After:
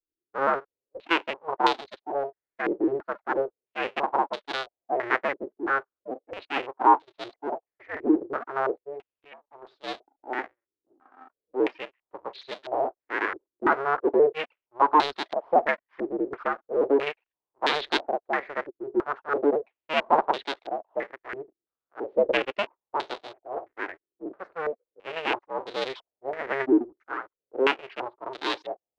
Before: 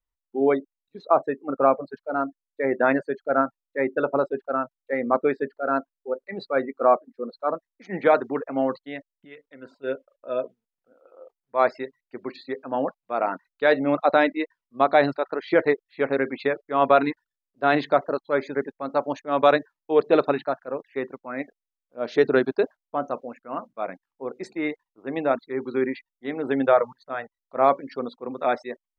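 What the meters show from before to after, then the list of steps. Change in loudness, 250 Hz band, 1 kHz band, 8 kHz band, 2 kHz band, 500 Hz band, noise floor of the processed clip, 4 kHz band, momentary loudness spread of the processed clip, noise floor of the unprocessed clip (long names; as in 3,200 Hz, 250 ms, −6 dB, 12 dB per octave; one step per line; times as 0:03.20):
−3.0 dB, −3.0 dB, −1.0 dB, can't be measured, −0.5 dB, −5.5 dB, below −85 dBFS, +6.0 dB, 16 LU, below −85 dBFS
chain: sub-harmonics by changed cycles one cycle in 2, inverted
low shelf with overshoot 260 Hz −11 dB, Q 1.5
low-pass on a step sequencer 3 Hz 350–3,800 Hz
level −8 dB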